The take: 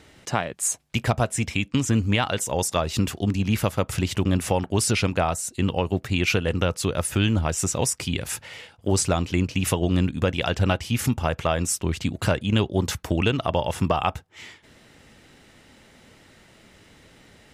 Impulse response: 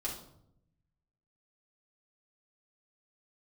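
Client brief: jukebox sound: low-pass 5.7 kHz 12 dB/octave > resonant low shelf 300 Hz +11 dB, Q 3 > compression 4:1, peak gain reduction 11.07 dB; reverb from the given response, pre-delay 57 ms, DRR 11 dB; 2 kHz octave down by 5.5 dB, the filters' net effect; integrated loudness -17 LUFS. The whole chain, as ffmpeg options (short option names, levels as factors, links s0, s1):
-filter_complex "[0:a]equalizer=f=2000:t=o:g=-7.5,asplit=2[s0][s1];[1:a]atrim=start_sample=2205,adelay=57[s2];[s1][s2]afir=irnorm=-1:irlink=0,volume=0.224[s3];[s0][s3]amix=inputs=2:normalize=0,lowpass=5700,lowshelf=f=300:t=q:w=3:g=11,acompressor=threshold=0.2:ratio=4,volume=1.26"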